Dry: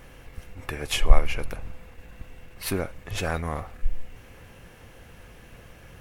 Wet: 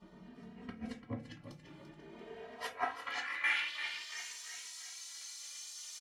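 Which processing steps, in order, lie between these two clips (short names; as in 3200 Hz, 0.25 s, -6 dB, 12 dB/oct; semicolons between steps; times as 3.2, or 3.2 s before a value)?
weighting filter D; spectral gate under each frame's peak -10 dB weak; 1.31–1.88 high shelf 3200 Hz +9.5 dB; 2.84–3.44 compressor 10:1, threshold -42 dBFS, peak gain reduction 18.5 dB; flipped gate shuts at -17 dBFS, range -31 dB; band-pass sweep 210 Hz -> 6700 Hz, 1.79–4.24; feedback echo 0.341 s, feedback 53%, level -10.5 dB; reverb RT60 0.25 s, pre-delay 3 ms, DRR 1 dB; endless flanger 2.9 ms +0.51 Hz; gain +11 dB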